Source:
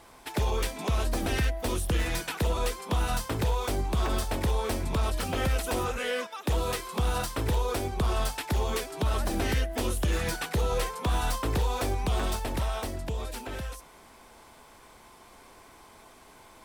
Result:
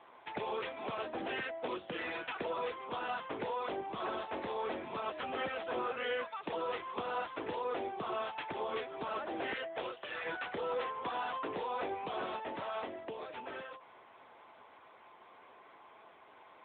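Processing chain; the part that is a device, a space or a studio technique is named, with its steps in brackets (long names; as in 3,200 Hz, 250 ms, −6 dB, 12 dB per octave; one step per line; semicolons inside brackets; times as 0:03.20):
0:09.19–0:10.24: high-pass filter 190 Hz → 760 Hz 12 dB per octave
telephone (band-pass filter 380–3,500 Hz; soft clipping −26 dBFS, distortion −19 dB; level −1.5 dB; AMR narrowband 10.2 kbit/s 8,000 Hz)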